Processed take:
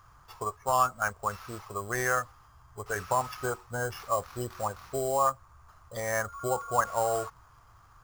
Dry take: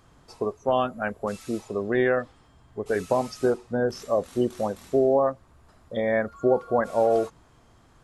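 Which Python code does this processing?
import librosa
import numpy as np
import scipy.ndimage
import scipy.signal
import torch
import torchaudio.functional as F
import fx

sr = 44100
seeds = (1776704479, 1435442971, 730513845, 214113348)

y = fx.sample_hold(x, sr, seeds[0], rate_hz=8100.0, jitter_pct=0)
y = fx.curve_eq(y, sr, hz=(110.0, 230.0, 620.0, 1200.0, 1800.0, 3600.0, 5600.0, 8800.0), db=(0, -17, -8, 8, -2, -7, 1, -3))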